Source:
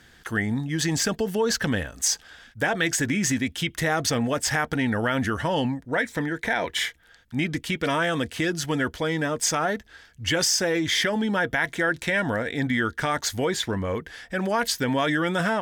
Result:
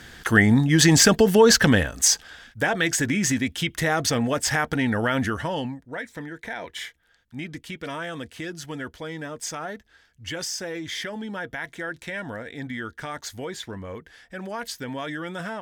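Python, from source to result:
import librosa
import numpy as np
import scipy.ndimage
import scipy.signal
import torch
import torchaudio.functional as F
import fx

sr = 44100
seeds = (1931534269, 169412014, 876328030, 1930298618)

y = fx.gain(x, sr, db=fx.line((1.47, 9.0), (2.65, 1.0), (5.21, 1.0), (5.91, -8.5)))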